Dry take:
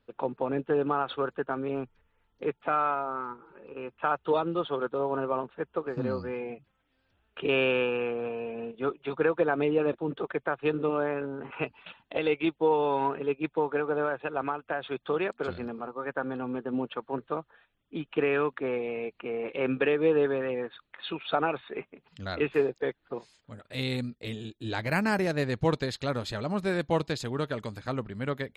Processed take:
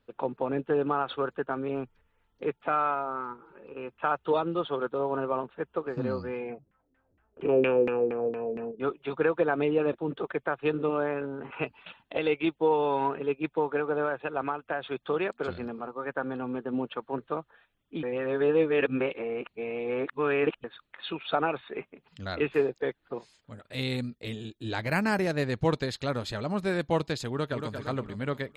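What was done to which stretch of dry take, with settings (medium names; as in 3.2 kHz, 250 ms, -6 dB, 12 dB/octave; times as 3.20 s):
6.48–8.80 s: LFO low-pass saw down 4.3 Hz 270–2100 Hz
18.03–20.64 s: reverse
27.28–27.74 s: echo throw 230 ms, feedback 50%, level -6 dB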